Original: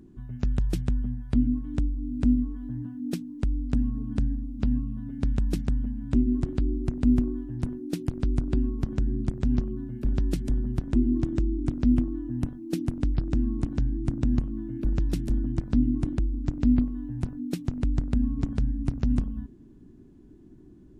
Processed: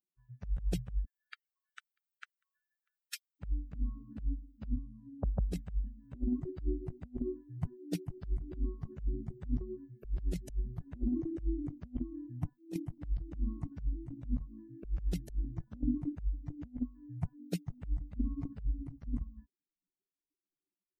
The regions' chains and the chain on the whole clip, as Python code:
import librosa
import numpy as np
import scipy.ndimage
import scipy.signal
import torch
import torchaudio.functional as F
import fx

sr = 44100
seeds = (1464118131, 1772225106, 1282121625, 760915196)

y = fx.chain(x, sr, fx.steep_highpass(hz=1200.0, slope=48),
    fx.echo_single(ms=642, db=-12.0), at=(1.05, 3.4))
y = fx.chain(y, sr, fx.lowpass(hz=1100.0, slope=12),
    fx.low_shelf(hz=190.0, db=-2.5),
    fx.band_squash(depth_pct=40), at=(4.76, 5.52))
y = fx.bin_expand(y, sr, power=3.0)
y = fx.peak_eq(y, sr, hz=160.0, db=2.0, octaves=1.4)
y = fx.over_compress(y, sr, threshold_db=-34.0, ratio=-0.5)
y = y * 10.0 ** (1.0 / 20.0)